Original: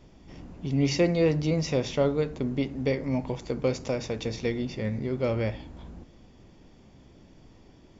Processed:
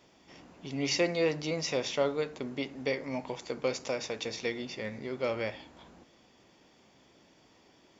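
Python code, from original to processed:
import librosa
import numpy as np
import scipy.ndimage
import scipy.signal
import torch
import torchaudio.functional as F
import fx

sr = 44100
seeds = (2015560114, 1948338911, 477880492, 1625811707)

y = fx.highpass(x, sr, hz=810.0, slope=6)
y = y * 10.0 ** (1.5 / 20.0)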